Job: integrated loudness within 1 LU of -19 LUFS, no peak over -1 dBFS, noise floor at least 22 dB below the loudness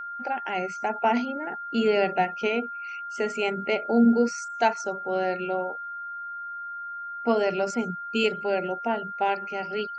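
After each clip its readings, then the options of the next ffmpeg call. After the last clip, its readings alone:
steady tone 1400 Hz; tone level -33 dBFS; loudness -27.0 LUFS; peak -10.0 dBFS; loudness target -19.0 LUFS
-> -af "bandreject=f=1.4k:w=30"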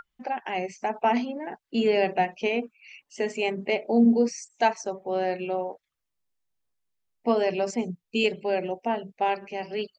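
steady tone none; loudness -27.0 LUFS; peak -9.5 dBFS; loudness target -19.0 LUFS
-> -af "volume=8dB"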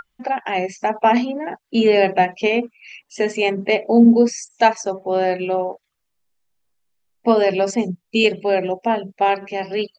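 loudness -19.0 LUFS; peak -1.5 dBFS; noise floor -74 dBFS

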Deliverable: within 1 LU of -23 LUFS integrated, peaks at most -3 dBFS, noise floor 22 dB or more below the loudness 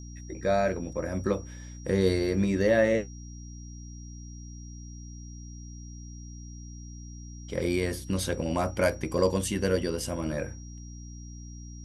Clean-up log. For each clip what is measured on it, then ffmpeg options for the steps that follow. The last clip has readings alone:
hum 60 Hz; harmonics up to 300 Hz; hum level -40 dBFS; steady tone 5700 Hz; tone level -51 dBFS; loudness -28.0 LUFS; peak -11.0 dBFS; loudness target -23.0 LUFS
-> -af "bandreject=f=60:t=h:w=4,bandreject=f=120:t=h:w=4,bandreject=f=180:t=h:w=4,bandreject=f=240:t=h:w=4,bandreject=f=300:t=h:w=4"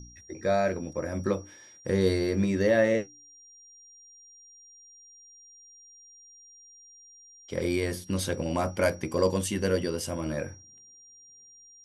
hum none; steady tone 5700 Hz; tone level -51 dBFS
-> -af "bandreject=f=5.7k:w=30"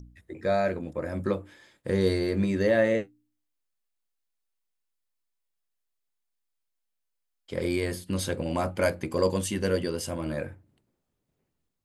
steady tone none; loudness -28.0 LUFS; peak -11.5 dBFS; loudness target -23.0 LUFS
-> -af "volume=5dB"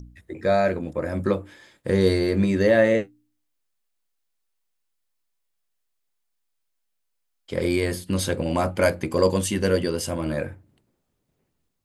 loudness -23.0 LUFS; peak -6.5 dBFS; noise floor -75 dBFS

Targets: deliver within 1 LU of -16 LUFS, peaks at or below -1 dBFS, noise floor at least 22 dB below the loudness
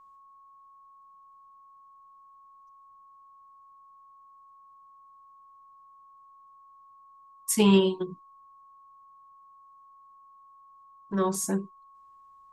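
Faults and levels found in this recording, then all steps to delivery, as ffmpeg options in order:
steady tone 1100 Hz; tone level -52 dBFS; loudness -26.0 LUFS; peak -9.5 dBFS; loudness target -16.0 LUFS
-> -af "bandreject=f=1.1k:w=30"
-af "volume=10dB,alimiter=limit=-1dB:level=0:latency=1"

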